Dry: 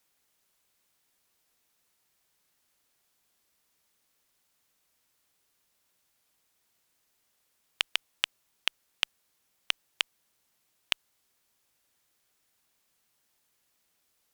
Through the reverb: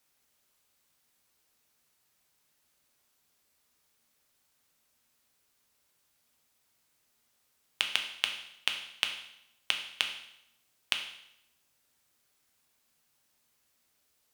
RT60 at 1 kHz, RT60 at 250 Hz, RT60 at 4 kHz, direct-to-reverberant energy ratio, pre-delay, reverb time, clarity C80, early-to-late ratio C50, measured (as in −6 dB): 0.80 s, 0.75 s, 0.75 s, 3.5 dB, 5 ms, 0.80 s, 10.5 dB, 8.0 dB